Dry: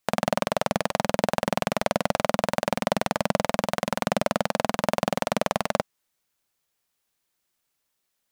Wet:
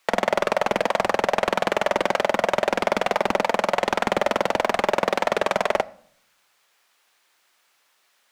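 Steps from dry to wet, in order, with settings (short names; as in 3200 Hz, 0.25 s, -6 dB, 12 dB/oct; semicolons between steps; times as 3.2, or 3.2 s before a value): overdrive pedal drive 29 dB, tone 1800 Hz, clips at -3.5 dBFS; low shelf 450 Hz -10.5 dB; notches 50/100 Hz; on a send at -17.5 dB: reverb RT60 0.60 s, pre-delay 9 ms; on the sum: Doppler distortion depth 0.58 ms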